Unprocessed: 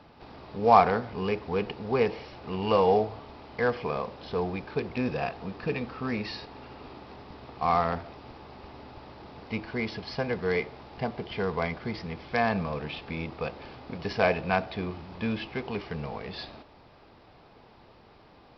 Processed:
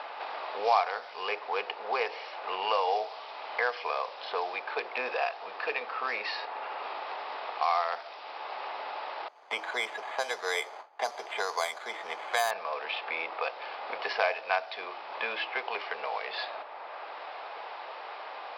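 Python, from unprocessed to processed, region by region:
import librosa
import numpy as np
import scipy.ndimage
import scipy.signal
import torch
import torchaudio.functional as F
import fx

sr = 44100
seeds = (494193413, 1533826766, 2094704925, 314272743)

y = fx.chain(x, sr, fx.gate_hold(open_db=-32.0, close_db=-43.0, hold_ms=71.0, range_db=-21, attack_ms=1.4, release_ms=100.0),
    fx.peak_eq(hz=490.0, db=-2.5, octaves=0.27),
    fx.resample_bad(factor=8, down='filtered', up='hold'), at=(9.28, 12.51))
y = scipy.signal.sosfilt(scipy.signal.butter(4, 610.0, 'highpass', fs=sr, output='sos'), y)
y = fx.env_lowpass(y, sr, base_hz=2600.0, full_db=-25.0)
y = fx.band_squash(y, sr, depth_pct=70)
y = F.gain(torch.from_numpy(y), 3.5).numpy()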